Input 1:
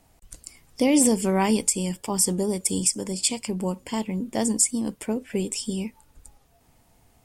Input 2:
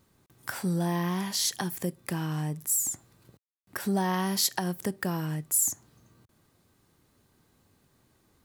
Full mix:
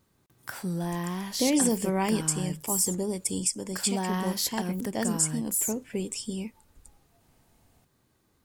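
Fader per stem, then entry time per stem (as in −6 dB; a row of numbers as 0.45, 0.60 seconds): −5.0, −3.0 decibels; 0.60, 0.00 seconds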